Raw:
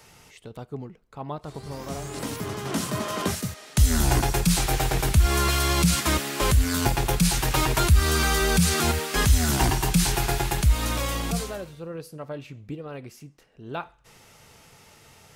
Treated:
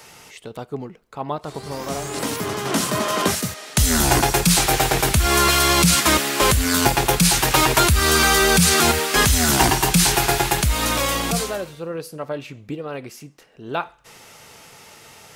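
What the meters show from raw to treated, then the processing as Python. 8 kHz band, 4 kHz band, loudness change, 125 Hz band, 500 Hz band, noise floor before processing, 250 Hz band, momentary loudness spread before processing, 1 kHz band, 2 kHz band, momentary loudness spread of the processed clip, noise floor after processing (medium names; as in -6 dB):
+8.5 dB, +8.5 dB, +6.0 dB, +1.0 dB, +7.0 dB, -54 dBFS, +4.5 dB, 17 LU, +8.0 dB, +8.5 dB, 17 LU, -48 dBFS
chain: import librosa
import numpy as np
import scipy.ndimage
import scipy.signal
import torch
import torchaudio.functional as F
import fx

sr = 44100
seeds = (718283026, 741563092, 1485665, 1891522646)

y = fx.low_shelf(x, sr, hz=150.0, db=-12.0)
y = F.gain(torch.from_numpy(y), 8.5).numpy()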